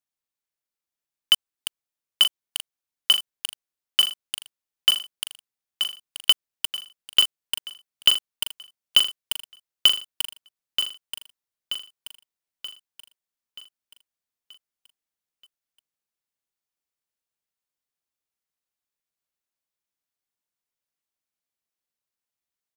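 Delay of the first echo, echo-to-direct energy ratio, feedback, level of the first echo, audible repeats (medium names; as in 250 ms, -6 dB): 930 ms, -6.5 dB, 48%, -7.5 dB, 5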